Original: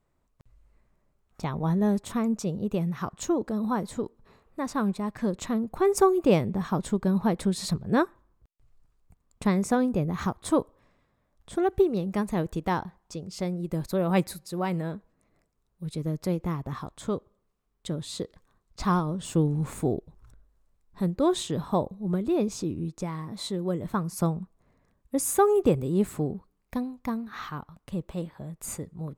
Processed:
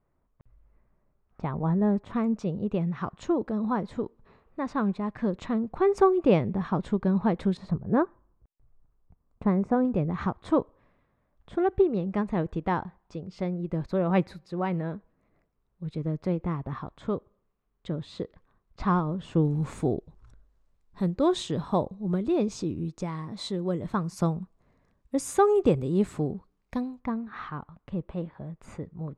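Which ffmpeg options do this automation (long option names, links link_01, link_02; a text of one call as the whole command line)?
ffmpeg -i in.wav -af "asetnsamples=nb_out_samples=441:pad=0,asendcmd='2.13 lowpass f 3000;7.57 lowpass f 1200;9.85 lowpass f 2600;19.45 lowpass f 6200;27 lowpass f 2300',lowpass=1800" out.wav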